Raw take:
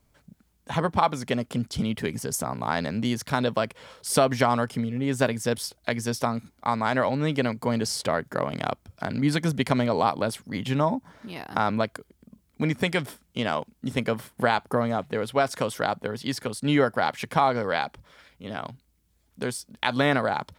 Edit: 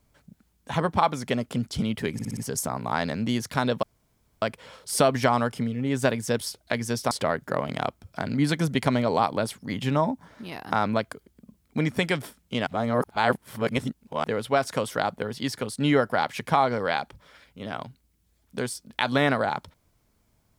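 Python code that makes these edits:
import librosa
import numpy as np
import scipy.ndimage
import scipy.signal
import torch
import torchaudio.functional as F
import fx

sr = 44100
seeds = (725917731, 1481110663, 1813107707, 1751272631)

y = fx.edit(x, sr, fx.stutter(start_s=2.13, slice_s=0.06, count=5),
    fx.insert_room_tone(at_s=3.59, length_s=0.59),
    fx.cut(start_s=6.28, length_s=1.67),
    fx.reverse_span(start_s=13.51, length_s=1.57), tone=tone)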